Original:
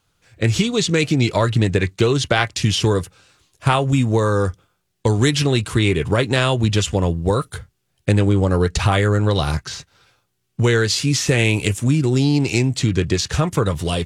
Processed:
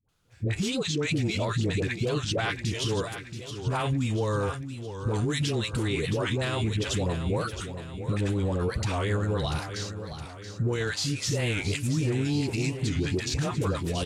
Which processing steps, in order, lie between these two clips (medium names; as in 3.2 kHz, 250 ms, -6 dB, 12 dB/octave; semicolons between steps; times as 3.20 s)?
phase dispersion highs, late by 88 ms, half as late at 540 Hz; peak limiter -13.5 dBFS, peak gain reduction 9 dB; feedback delay 679 ms, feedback 50%, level -10 dB; warped record 45 rpm, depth 160 cents; trim -6.5 dB